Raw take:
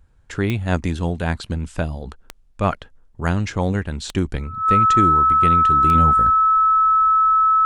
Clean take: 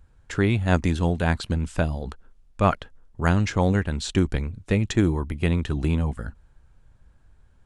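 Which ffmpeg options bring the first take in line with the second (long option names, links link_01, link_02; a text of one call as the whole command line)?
ffmpeg -i in.wav -af "adeclick=threshold=4,bandreject=frequency=1300:width=30,asetnsamples=nb_out_samples=441:pad=0,asendcmd='5.95 volume volume -5.5dB',volume=0dB" out.wav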